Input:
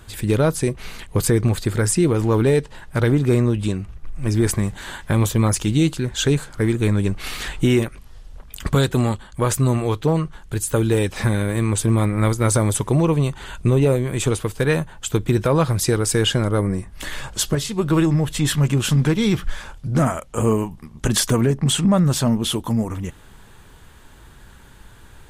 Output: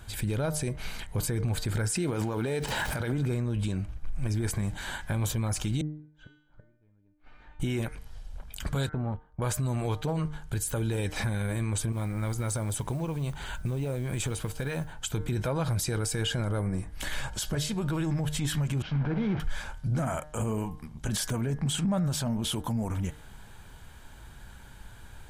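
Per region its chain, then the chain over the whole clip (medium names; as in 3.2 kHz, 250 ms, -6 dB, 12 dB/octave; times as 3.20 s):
1.89–3.12 s: high-pass 230 Hz 6 dB/octave + crackle 500 per s -46 dBFS + swell ahead of each attack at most 24 dB/s
5.81–7.60 s: low-pass 1.3 kHz + inverted gate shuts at -17 dBFS, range -25 dB + feedback comb 300 Hz, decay 0.73 s, mix 90%
8.89–9.42 s: gate -34 dBFS, range -15 dB + low-pass 1.2 kHz + compression 10:1, threshold -23 dBFS
11.92–14.93 s: compression 10:1, threshold -23 dBFS + modulation noise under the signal 30 dB
18.82–19.40 s: one-bit delta coder 32 kbps, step -20.5 dBFS + low-pass 1.5 kHz + three bands expanded up and down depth 100%
whole clip: comb 1.3 ms, depth 33%; de-hum 151.9 Hz, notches 14; peak limiter -17.5 dBFS; trim -4 dB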